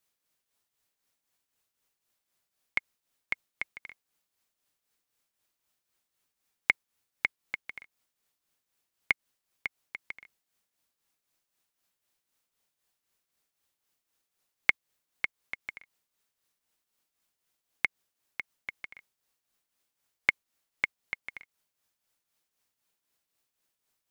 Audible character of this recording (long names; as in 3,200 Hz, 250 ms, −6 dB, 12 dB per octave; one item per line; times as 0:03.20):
tremolo triangle 3.9 Hz, depth 65%